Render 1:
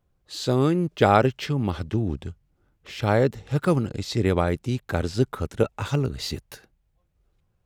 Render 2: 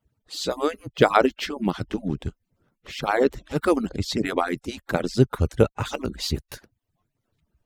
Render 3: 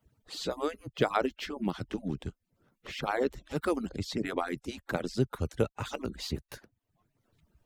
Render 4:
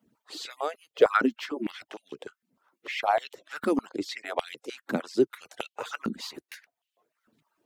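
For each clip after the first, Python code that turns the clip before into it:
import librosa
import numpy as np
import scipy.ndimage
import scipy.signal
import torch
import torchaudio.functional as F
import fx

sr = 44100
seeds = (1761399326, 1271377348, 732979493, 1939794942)

y1 = fx.hpss_only(x, sr, part='percussive')
y1 = fx.low_shelf(y1, sr, hz=100.0, db=9.0)
y1 = y1 * 10.0 ** (3.0 / 20.0)
y2 = fx.band_squash(y1, sr, depth_pct=40)
y2 = y2 * 10.0 ** (-8.5 / 20.0)
y3 = fx.filter_held_highpass(y2, sr, hz=6.6, low_hz=230.0, high_hz=3000.0)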